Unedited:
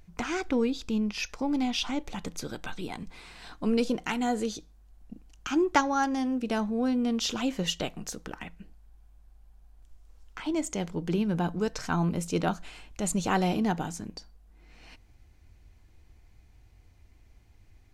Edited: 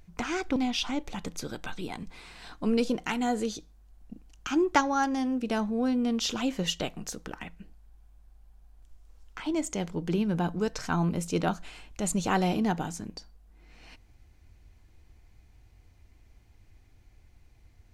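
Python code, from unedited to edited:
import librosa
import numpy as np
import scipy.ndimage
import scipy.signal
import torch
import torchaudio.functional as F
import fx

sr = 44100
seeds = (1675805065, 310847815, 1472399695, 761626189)

y = fx.edit(x, sr, fx.cut(start_s=0.56, length_s=1.0), tone=tone)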